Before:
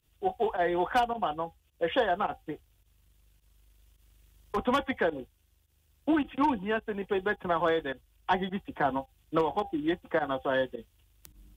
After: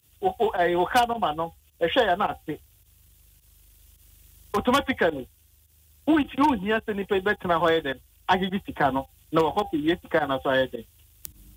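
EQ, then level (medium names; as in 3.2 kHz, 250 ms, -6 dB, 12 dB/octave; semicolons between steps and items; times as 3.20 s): high-pass 63 Hz 24 dB/octave; bass shelf 86 Hz +10.5 dB; treble shelf 4.3 kHz +11.5 dB; +4.5 dB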